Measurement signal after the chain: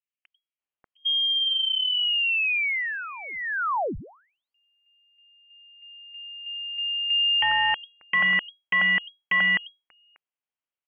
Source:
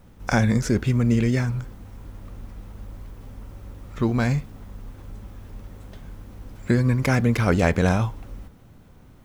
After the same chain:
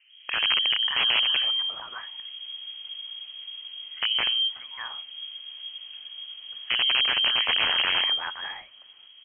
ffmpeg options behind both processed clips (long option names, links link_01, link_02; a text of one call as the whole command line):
ffmpeg -i in.wav -filter_complex "[0:a]acrossover=split=220|1500[link_01][link_02][link_03];[link_01]adelay=90[link_04];[link_03]adelay=590[link_05];[link_04][link_02][link_05]amix=inputs=3:normalize=0,aeval=exprs='(mod(5.62*val(0)+1,2)-1)/5.62':channel_layout=same,lowpass=frequency=2800:width_type=q:width=0.5098,lowpass=frequency=2800:width_type=q:width=0.6013,lowpass=frequency=2800:width_type=q:width=0.9,lowpass=frequency=2800:width_type=q:width=2.563,afreqshift=-3300,volume=-1.5dB" out.wav